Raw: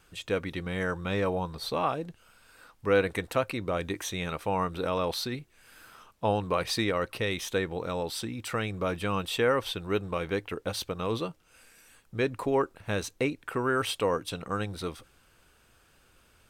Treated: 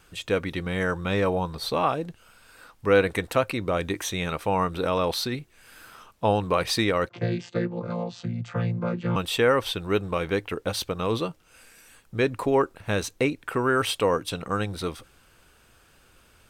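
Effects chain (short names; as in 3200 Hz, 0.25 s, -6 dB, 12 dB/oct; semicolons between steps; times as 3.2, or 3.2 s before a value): 7.09–9.16 chord vocoder bare fifth, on A#2; gain +4.5 dB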